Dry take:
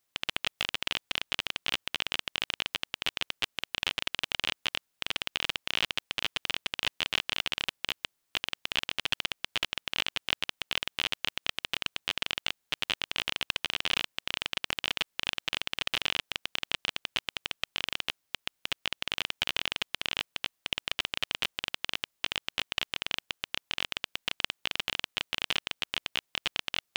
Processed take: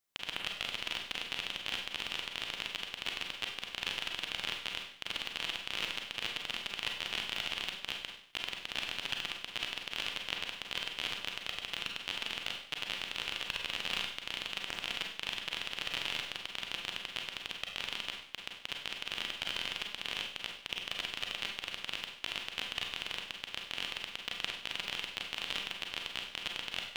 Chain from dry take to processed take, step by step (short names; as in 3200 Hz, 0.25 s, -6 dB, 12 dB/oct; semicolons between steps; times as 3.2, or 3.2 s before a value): Schroeder reverb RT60 0.63 s, combs from 32 ms, DRR 1.5 dB; gain -7 dB